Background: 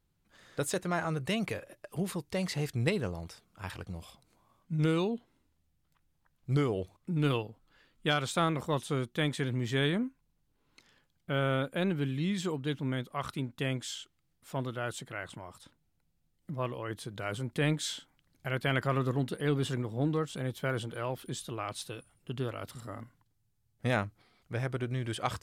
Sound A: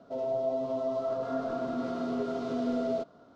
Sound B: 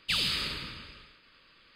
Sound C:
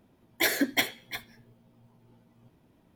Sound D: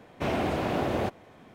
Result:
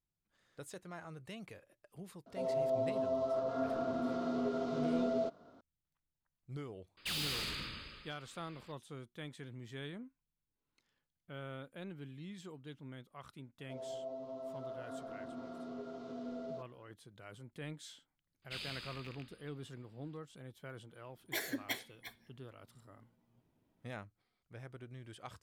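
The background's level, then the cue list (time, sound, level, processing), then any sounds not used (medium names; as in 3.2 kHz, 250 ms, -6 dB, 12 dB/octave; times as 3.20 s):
background -16.5 dB
2.26 s: add A -3.5 dB
6.97 s: add B -2 dB + overload inside the chain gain 34.5 dB
13.59 s: add A -13.5 dB
18.42 s: add B -17 dB + rattle on loud lows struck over -46 dBFS, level -21 dBFS
20.92 s: add C -13 dB
not used: D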